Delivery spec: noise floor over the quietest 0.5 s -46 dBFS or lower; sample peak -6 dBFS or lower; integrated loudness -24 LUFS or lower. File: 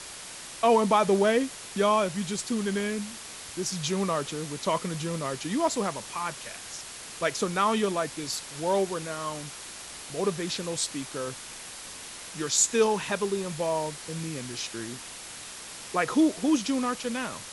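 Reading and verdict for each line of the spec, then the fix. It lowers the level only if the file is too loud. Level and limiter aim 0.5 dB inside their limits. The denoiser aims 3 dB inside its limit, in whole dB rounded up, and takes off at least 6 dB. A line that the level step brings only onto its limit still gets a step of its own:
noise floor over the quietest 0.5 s -42 dBFS: fail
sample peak -9.5 dBFS: OK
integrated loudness -28.0 LUFS: OK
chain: denoiser 7 dB, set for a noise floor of -42 dBFS

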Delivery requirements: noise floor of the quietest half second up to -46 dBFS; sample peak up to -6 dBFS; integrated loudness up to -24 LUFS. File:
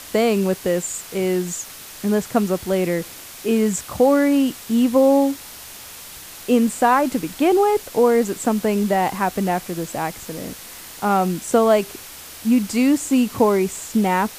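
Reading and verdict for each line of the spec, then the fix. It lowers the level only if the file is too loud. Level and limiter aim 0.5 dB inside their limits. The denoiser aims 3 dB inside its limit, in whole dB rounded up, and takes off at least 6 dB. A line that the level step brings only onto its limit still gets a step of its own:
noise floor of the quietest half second -38 dBFS: fail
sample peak -4.5 dBFS: fail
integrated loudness -19.5 LUFS: fail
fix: denoiser 6 dB, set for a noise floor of -38 dBFS; gain -5 dB

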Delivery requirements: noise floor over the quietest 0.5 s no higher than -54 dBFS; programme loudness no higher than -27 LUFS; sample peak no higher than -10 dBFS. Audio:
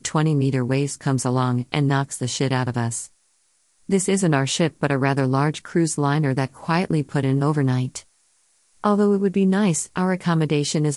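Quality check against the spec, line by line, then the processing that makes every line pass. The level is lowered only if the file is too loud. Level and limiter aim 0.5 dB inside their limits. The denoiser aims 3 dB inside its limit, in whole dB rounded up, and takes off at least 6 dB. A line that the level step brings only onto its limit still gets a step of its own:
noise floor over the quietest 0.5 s -64 dBFS: OK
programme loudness -21.5 LUFS: fail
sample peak -4.0 dBFS: fail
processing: gain -6 dB; limiter -10.5 dBFS

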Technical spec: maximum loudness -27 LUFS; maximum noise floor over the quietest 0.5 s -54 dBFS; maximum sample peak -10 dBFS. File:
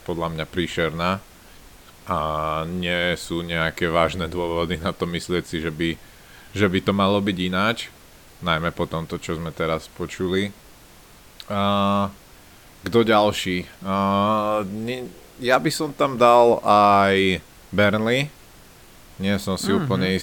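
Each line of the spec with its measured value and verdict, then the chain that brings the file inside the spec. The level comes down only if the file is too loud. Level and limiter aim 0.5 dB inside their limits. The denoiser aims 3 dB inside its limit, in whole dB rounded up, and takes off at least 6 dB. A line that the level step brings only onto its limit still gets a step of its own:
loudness -22.0 LUFS: fail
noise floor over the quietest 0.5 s -48 dBFS: fail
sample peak -2.5 dBFS: fail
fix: denoiser 6 dB, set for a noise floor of -48 dBFS; gain -5.5 dB; limiter -10.5 dBFS

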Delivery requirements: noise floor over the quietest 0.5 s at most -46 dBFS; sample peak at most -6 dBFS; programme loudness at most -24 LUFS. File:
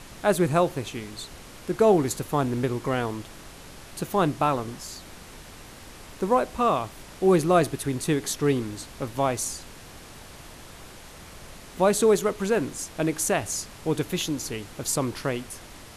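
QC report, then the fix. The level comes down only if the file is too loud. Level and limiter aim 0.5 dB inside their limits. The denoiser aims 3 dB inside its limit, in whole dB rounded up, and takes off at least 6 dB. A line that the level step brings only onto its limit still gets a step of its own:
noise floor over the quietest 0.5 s -45 dBFS: fail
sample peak -8.5 dBFS: OK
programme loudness -25.5 LUFS: OK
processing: denoiser 6 dB, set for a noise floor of -45 dBFS

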